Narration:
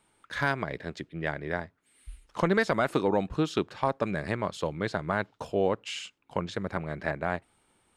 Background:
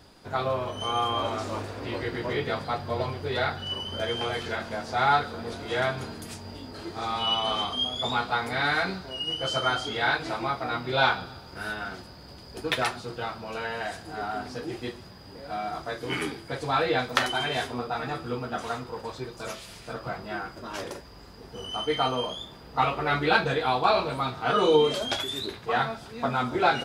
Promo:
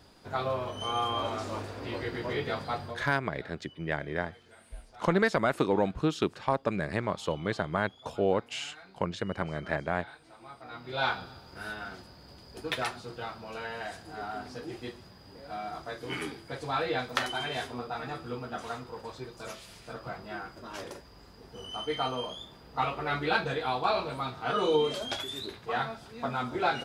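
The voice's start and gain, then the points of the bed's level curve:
2.65 s, -0.5 dB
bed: 2.85 s -3.5 dB
3.09 s -25 dB
10.24 s -25 dB
11.1 s -5.5 dB

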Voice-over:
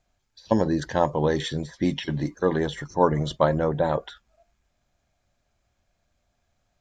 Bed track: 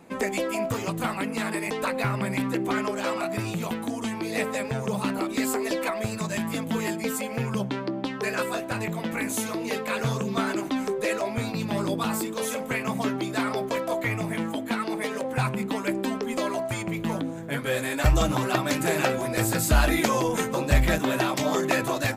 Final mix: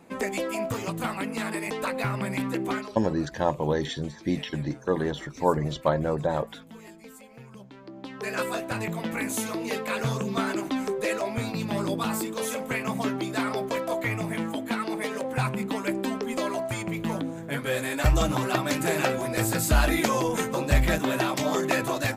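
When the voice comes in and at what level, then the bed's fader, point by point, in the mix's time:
2.45 s, -3.0 dB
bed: 2.73 s -2 dB
2.98 s -18.5 dB
7.72 s -18.5 dB
8.39 s -1 dB

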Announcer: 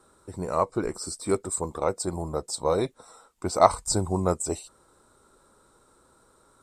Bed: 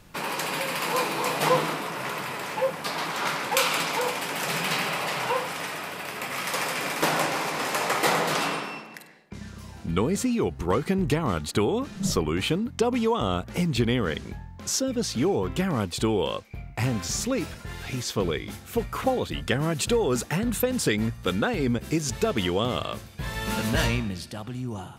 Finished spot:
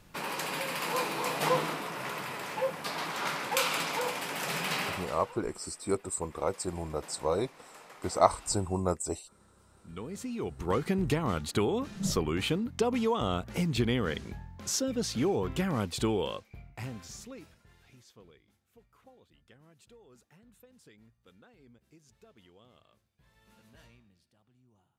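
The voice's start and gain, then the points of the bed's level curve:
4.60 s, -5.0 dB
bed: 4.89 s -5.5 dB
5.39 s -26.5 dB
9.42 s -26.5 dB
10.76 s -4.5 dB
16.1 s -4.5 dB
18.55 s -34 dB

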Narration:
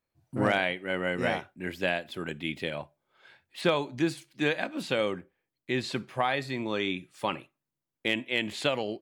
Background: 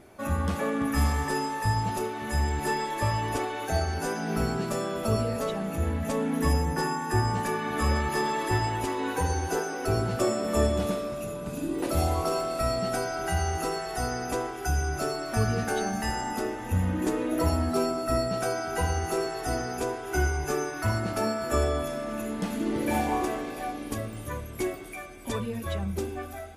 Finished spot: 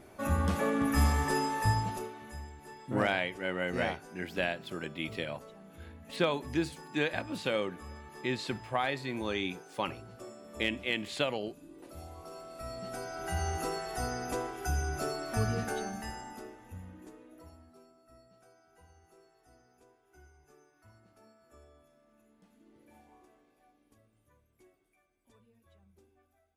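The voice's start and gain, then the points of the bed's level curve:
2.55 s, -3.5 dB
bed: 1.69 s -1.5 dB
2.57 s -21.5 dB
12.12 s -21.5 dB
13.47 s -5 dB
15.58 s -5 dB
17.85 s -33.5 dB

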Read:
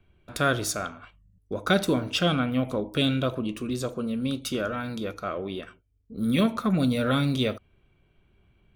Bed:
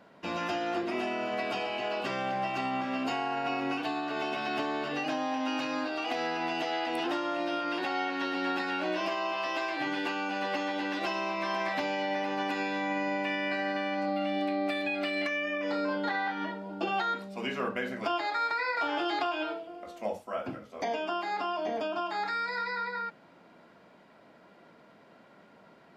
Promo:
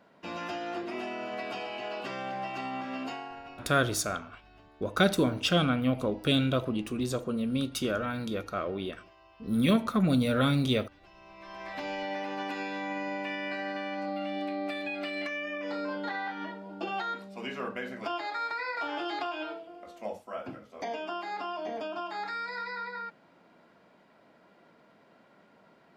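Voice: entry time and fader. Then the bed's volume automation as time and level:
3.30 s, -1.5 dB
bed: 3.03 s -4 dB
3.97 s -26.5 dB
11.04 s -26.5 dB
11.89 s -3.5 dB

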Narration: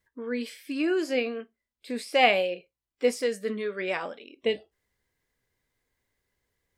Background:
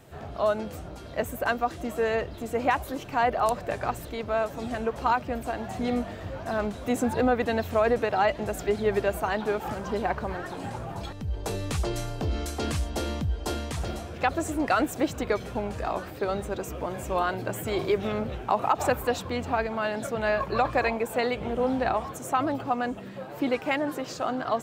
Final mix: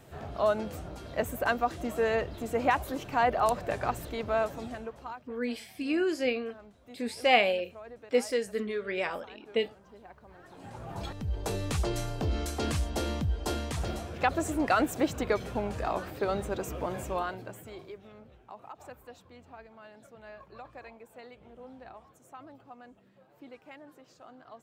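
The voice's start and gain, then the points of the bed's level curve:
5.10 s, -2.0 dB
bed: 4.47 s -1.5 dB
5.36 s -23.5 dB
10.22 s -23.5 dB
11.02 s -1.5 dB
16.97 s -1.5 dB
18.03 s -22.5 dB

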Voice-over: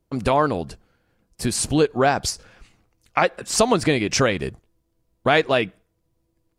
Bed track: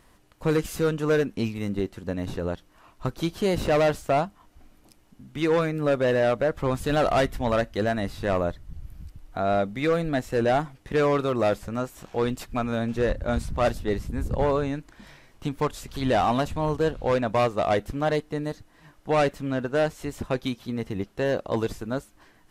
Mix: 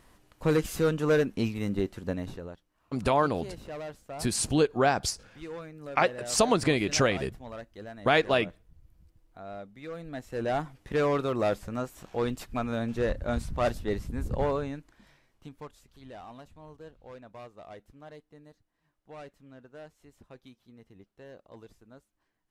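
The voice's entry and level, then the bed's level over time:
2.80 s, -5.5 dB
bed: 2.11 s -1.5 dB
2.64 s -18 dB
9.83 s -18 dB
10.7 s -4 dB
14.41 s -4 dB
16.08 s -23.5 dB

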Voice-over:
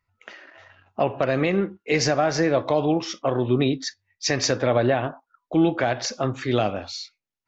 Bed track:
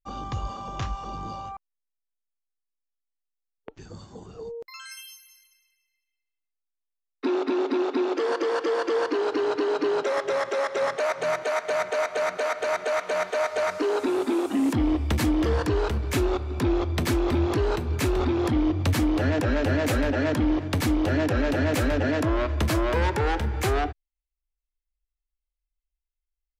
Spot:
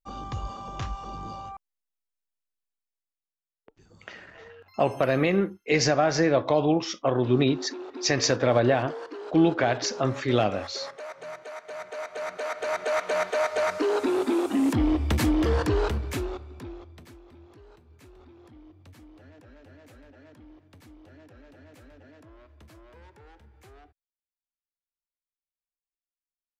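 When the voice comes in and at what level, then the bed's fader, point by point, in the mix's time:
3.80 s, -1.0 dB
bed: 2.66 s -2.5 dB
3.47 s -13.5 dB
11.64 s -13.5 dB
12.98 s 0 dB
15.87 s 0 dB
17.24 s -28 dB

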